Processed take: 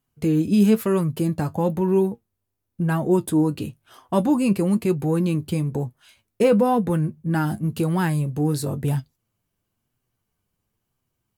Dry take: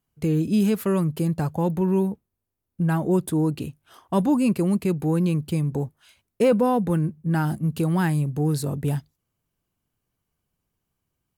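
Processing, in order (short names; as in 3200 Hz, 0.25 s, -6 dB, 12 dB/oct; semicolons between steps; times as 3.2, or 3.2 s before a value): flange 1 Hz, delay 7.6 ms, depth 2.8 ms, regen +54%; gain +6 dB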